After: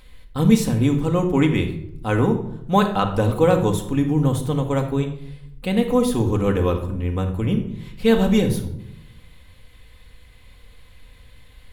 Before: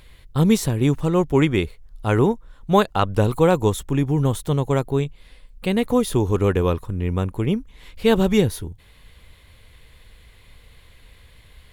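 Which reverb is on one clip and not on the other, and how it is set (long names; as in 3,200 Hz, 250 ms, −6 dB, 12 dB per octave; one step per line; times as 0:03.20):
rectangular room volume 1,900 cubic metres, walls furnished, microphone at 2 metres
level −2.5 dB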